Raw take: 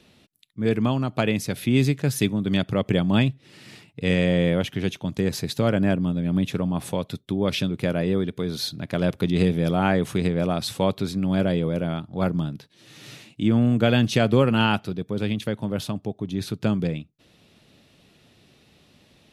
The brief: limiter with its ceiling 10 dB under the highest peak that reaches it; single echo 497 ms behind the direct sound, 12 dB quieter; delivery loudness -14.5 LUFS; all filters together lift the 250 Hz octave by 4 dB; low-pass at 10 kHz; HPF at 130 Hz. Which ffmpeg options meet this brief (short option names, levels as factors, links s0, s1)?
-af "highpass=130,lowpass=10000,equalizer=f=250:t=o:g=6,alimiter=limit=0.178:level=0:latency=1,aecho=1:1:497:0.251,volume=3.35"